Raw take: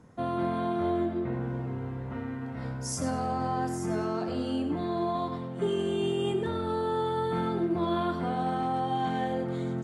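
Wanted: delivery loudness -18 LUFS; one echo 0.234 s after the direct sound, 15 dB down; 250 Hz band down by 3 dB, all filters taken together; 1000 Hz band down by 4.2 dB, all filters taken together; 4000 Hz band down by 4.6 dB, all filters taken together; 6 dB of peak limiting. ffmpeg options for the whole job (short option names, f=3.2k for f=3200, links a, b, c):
-af "equalizer=f=250:t=o:g=-4,equalizer=f=1k:t=o:g=-5.5,equalizer=f=4k:t=o:g=-6,alimiter=level_in=3dB:limit=-24dB:level=0:latency=1,volume=-3dB,aecho=1:1:234:0.178,volume=17.5dB"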